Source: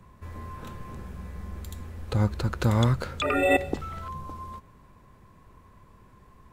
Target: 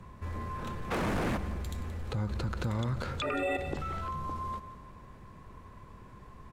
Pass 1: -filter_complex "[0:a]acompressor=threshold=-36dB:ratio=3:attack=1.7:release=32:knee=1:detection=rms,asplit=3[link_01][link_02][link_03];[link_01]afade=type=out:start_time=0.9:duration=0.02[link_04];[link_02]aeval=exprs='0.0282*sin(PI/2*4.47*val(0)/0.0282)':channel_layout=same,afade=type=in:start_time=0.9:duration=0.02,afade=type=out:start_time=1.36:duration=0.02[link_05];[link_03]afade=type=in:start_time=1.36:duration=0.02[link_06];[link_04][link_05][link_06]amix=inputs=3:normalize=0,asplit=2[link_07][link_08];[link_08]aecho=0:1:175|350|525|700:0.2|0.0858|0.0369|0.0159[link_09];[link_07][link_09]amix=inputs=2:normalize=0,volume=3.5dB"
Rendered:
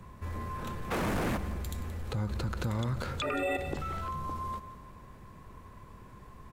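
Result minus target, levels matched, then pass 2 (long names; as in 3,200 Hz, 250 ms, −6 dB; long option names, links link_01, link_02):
8,000 Hz band +3.0 dB
-filter_complex "[0:a]acompressor=threshold=-36dB:ratio=3:attack=1.7:release=32:knee=1:detection=rms,highshelf=frequency=11000:gain=-11.5,asplit=3[link_01][link_02][link_03];[link_01]afade=type=out:start_time=0.9:duration=0.02[link_04];[link_02]aeval=exprs='0.0282*sin(PI/2*4.47*val(0)/0.0282)':channel_layout=same,afade=type=in:start_time=0.9:duration=0.02,afade=type=out:start_time=1.36:duration=0.02[link_05];[link_03]afade=type=in:start_time=1.36:duration=0.02[link_06];[link_04][link_05][link_06]amix=inputs=3:normalize=0,asplit=2[link_07][link_08];[link_08]aecho=0:1:175|350|525|700:0.2|0.0858|0.0369|0.0159[link_09];[link_07][link_09]amix=inputs=2:normalize=0,volume=3.5dB"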